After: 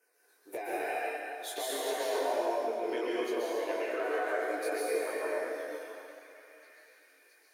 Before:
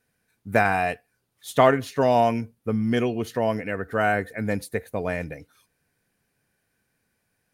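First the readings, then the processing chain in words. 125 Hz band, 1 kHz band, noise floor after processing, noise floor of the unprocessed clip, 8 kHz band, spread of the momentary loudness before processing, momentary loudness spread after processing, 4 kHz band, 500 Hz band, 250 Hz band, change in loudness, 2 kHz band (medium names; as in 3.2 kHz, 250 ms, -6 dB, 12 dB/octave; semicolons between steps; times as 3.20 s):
under -40 dB, -11.0 dB, -67 dBFS, -75 dBFS, +0.5 dB, 11 LU, 11 LU, -3.5 dB, -7.5 dB, -14.0 dB, -10.0 dB, -9.5 dB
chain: coarse spectral quantiser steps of 15 dB; elliptic high-pass 320 Hz, stop band 40 dB; band-stop 7.7 kHz, Q 21; peak limiter -17 dBFS, peak gain reduction 11 dB; compression 3:1, threshold -43 dBFS, peak gain reduction 15.5 dB; LFO notch saw down 1 Hz 710–3800 Hz; repeats whose band climbs or falls 667 ms, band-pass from 1.2 kHz, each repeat 0.7 oct, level -11.5 dB; plate-style reverb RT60 2.6 s, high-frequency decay 0.8×, pre-delay 115 ms, DRR -6.5 dB; detune thickener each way 14 cents; trim +7 dB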